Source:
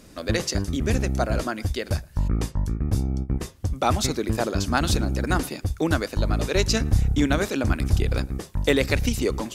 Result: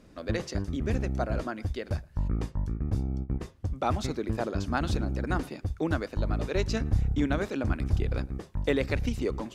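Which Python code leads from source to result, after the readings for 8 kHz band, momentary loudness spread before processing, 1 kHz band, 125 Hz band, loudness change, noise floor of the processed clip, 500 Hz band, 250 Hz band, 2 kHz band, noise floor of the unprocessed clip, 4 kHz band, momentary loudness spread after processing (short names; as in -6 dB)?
-15.5 dB, 6 LU, -6.5 dB, -5.5 dB, -6.0 dB, -54 dBFS, -5.5 dB, -5.5 dB, -8.0 dB, -47 dBFS, -12.0 dB, 6 LU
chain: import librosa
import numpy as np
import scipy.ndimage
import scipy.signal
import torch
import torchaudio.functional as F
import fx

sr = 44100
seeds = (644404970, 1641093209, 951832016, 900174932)

y = fx.lowpass(x, sr, hz=2100.0, slope=6)
y = y * 10.0 ** (-5.5 / 20.0)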